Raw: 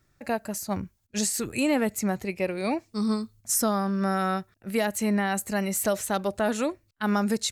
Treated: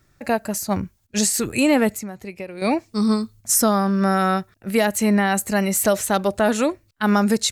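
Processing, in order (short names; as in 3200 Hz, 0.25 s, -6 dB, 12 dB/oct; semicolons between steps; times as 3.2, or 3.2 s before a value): 1.92–2.62 compressor 6:1, threshold -37 dBFS, peak gain reduction 15 dB; gain +7 dB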